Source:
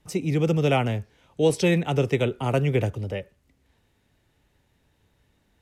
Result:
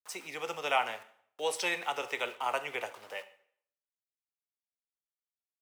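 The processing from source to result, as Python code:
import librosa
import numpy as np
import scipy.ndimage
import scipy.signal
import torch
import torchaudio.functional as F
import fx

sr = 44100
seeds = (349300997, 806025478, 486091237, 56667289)

y = np.where(np.abs(x) >= 10.0 ** (-42.5 / 20.0), x, 0.0)
y = fx.highpass_res(y, sr, hz=990.0, q=1.8)
y = fx.rev_plate(y, sr, seeds[0], rt60_s=0.61, hf_ratio=0.9, predelay_ms=0, drr_db=11.0)
y = y * librosa.db_to_amplitude(-4.0)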